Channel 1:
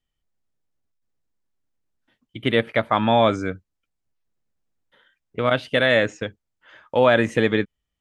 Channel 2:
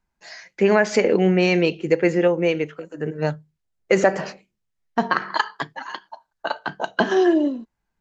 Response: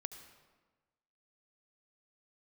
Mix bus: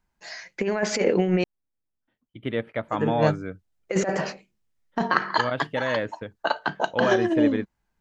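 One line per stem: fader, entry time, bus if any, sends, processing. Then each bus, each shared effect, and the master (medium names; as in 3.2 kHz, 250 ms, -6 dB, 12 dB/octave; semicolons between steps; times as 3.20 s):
-7.0 dB, 0.00 s, no send, treble shelf 2.7 kHz -12 dB
-1.0 dB, 0.00 s, muted 1.44–2.88 s, no send, compressor with a negative ratio -19 dBFS, ratio -0.5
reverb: none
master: none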